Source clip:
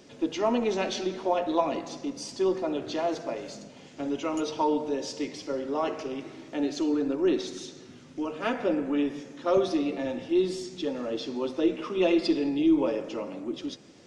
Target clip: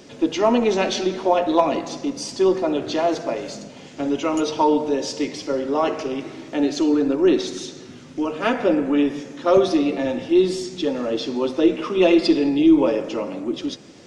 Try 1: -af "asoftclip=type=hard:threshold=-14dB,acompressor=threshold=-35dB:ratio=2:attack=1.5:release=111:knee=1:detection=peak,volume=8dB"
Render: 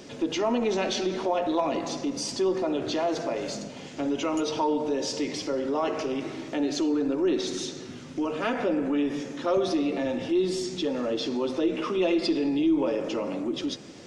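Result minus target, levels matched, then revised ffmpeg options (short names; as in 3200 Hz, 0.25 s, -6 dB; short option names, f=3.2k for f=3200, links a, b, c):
compressor: peak gain reduction +10 dB
-af "asoftclip=type=hard:threshold=-14dB,volume=8dB"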